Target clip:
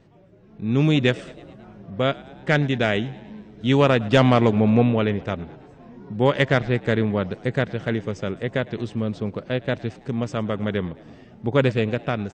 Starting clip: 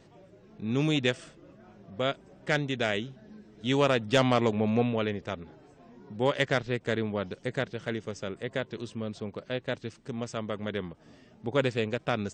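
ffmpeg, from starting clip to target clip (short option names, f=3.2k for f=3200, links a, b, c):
-filter_complex "[0:a]bass=f=250:g=5,treble=f=4k:g=-8,dynaudnorm=f=260:g=5:m=8dB,asplit=6[a][b][c][d][e][f];[b]adelay=108,afreqshift=68,volume=-22dB[g];[c]adelay=216,afreqshift=136,volume=-26.4dB[h];[d]adelay=324,afreqshift=204,volume=-30.9dB[i];[e]adelay=432,afreqshift=272,volume=-35.3dB[j];[f]adelay=540,afreqshift=340,volume=-39.7dB[k];[a][g][h][i][j][k]amix=inputs=6:normalize=0,volume=-1dB"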